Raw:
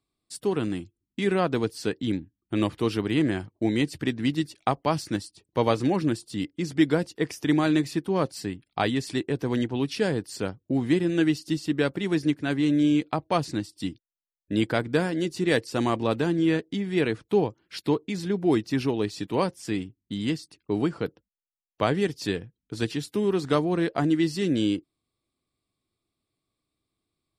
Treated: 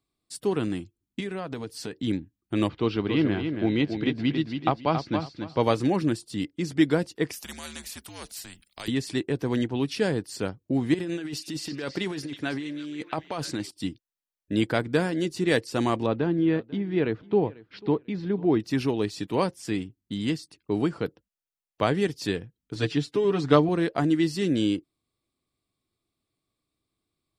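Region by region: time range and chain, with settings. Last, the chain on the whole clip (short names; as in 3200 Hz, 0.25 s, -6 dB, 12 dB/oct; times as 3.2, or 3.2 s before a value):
1.2–1.96 compressor 4:1, threshold -30 dBFS + notch 350 Hz, Q 11
2.68–5.6 LPF 4400 Hz 24 dB/oct + notch 1800 Hz + feedback echo 0.277 s, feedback 23%, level -7 dB
7.33–8.88 pre-emphasis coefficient 0.8 + frequency shift -84 Hz + spectral compressor 2:1
10.94–13.71 negative-ratio compressor -28 dBFS + low shelf 260 Hz -8.5 dB + delay with a stepping band-pass 0.323 s, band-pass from 4000 Hz, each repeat -0.7 oct, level -7.5 dB
16.06–18.6 LPF 4700 Hz 24 dB/oct + high shelf 2200 Hz -10.5 dB + feedback echo 0.493 s, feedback 23%, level -21.5 dB
22.75–23.69 LPF 5500 Hz + comb 6.9 ms, depth 83%
whole clip: dry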